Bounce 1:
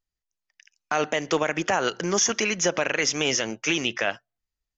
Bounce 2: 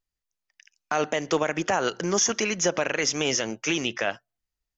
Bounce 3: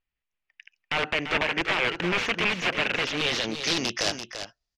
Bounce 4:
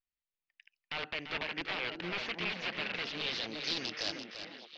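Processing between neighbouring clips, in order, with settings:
dynamic bell 2.4 kHz, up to -3 dB, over -38 dBFS, Q 0.81
integer overflow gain 19.5 dB; delay 340 ms -9 dB; low-pass sweep 2.6 kHz -> 5.2 kHz, 2.94–4.01 s
four-pole ladder low-pass 5.2 kHz, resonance 50%; repeats whose band climbs or falls 382 ms, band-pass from 240 Hz, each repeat 1.4 oct, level -1.5 dB; trim -4 dB

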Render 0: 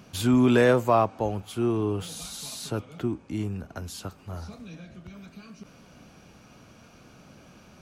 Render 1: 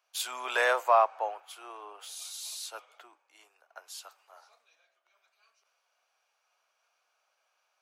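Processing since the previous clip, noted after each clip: inverse Chebyshev high-pass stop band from 200 Hz, stop band 60 dB; three bands expanded up and down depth 70%; trim -4.5 dB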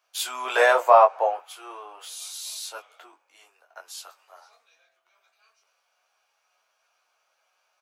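dynamic bell 570 Hz, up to +7 dB, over -40 dBFS, Q 0.93; on a send: early reflections 11 ms -5.5 dB, 23 ms -5 dB; on the sum: trim +2.5 dB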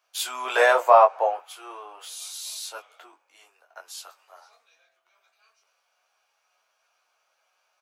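no audible change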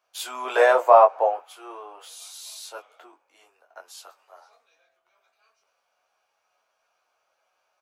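tilt shelf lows +5 dB

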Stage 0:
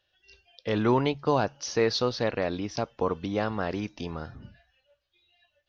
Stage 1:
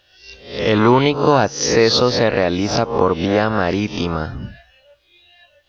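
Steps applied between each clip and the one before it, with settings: reverse spectral sustain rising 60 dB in 0.50 s; in parallel at +2 dB: compression, threshold -32 dBFS, peak gain reduction 13.5 dB; on the sum: trim +7.5 dB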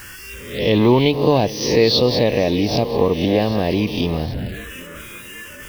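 jump at every zero crossing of -27.5 dBFS; thinning echo 781 ms, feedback 53%, high-pass 230 Hz, level -16 dB; touch-sensitive phaser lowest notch 560 Hz, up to 1.4 kHz, full sweep at -18 dBFS

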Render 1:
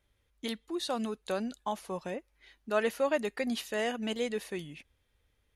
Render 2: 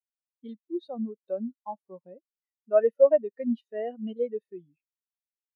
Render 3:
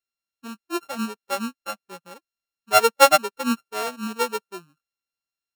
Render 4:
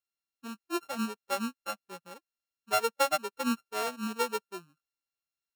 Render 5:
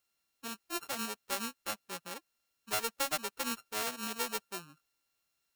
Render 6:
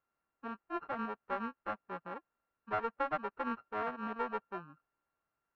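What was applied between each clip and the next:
spectral contrast expander 2.5:1; trim +7.5 dB
sorted samples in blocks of 32 samples; trim +4 dB
compression 6:1, threshold -20 dBFS, peak gain reduction 11.5 dB; trim -4.5 dB
spectrum-flattening compressor 2:1
four-pole ladder low-pass 1.8 kHz, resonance 25%; trim +7.5 dB

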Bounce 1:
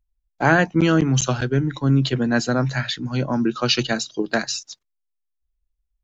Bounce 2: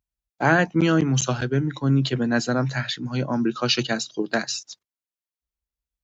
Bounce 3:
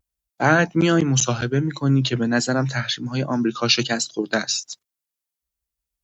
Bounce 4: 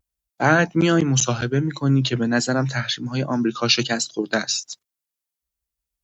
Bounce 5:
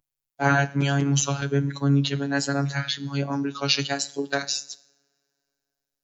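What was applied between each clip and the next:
high-pass 83 Hz; trim -2 dB
treble shelf 6.1 kHz +8.5 dB; vibrato 1.3 Hz 65 cents; trim +1.5 dB
no audible change
two-slope reverb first 0.69 s, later 3 s, from -27 dB, DRR 15.5 dB; robot voice 140 Hz; trim -1.5 dB

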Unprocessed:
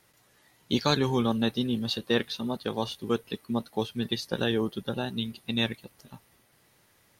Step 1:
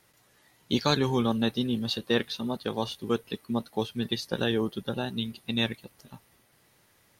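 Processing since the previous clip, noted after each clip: no audible change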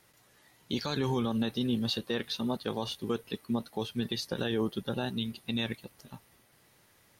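peak limiter -20.5 dBFS, peak gain reduction 11 dB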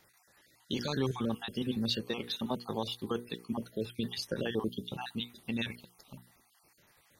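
random holes in the spectrogram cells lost 35%; hum notches 60/120/180/240/300/360/420/480 Hz

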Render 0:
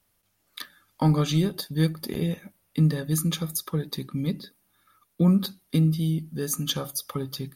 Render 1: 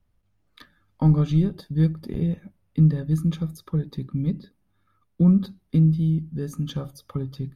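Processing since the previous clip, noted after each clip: RIAA curve playback; trim -6 dB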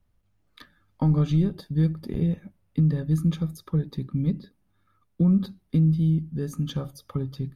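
peak limiter -14 dBFS, peak gain reduction 5 dB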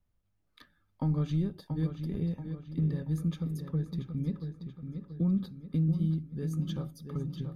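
filtered feedback delay 682 ms, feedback 49%, low-pass 4.5 kHz, level -7.5 dB; trim -8 dB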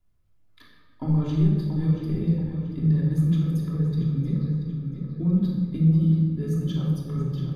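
simulated room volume 1600 m³, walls mixed, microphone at 3.1 m

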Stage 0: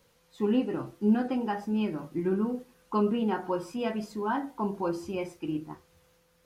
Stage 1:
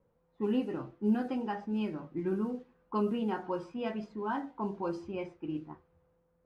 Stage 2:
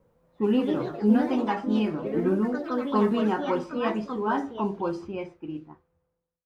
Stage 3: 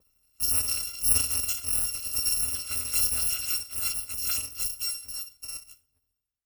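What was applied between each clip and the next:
level-controlled noise filter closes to 820 Hz, open at -22.5 dBFS; trim -4.5 dB
fade out at the end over 1.94 s; ever faster or slower copies 229 ms, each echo +3 st, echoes 3, each echo -6 dB; trim +7.5 dB
bit-reversed sample order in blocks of 256 samples; on a send at -20 dB: reverberation RT60 0.65 s, pre-delay 8 ms; on the sum: trim -3 dB

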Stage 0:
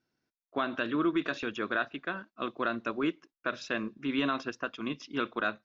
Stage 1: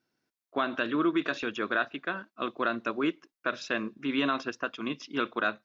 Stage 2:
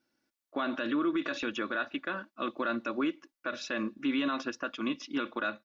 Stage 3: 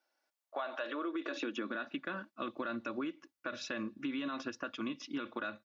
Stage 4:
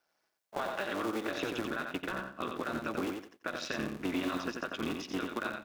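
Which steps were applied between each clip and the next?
bass shelf 97 Hz -10.5 dB; trim +2.5 dB
comb 3.5 ms, depth 51%; peak limiter -22 dBFS, peak gain reduction 7.5 dB
high-pass sweep 680 Hz -> 93 Hz, 0.79–2.38 s; compression, threshold -32 dBFS, peak gain reduction 7.5 dB; trim -2.5 dB
cycle switcher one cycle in 3, muted; on a send: feedback delay 89 ms, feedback 24%, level -5 dB; on the sum: trim +4 dB

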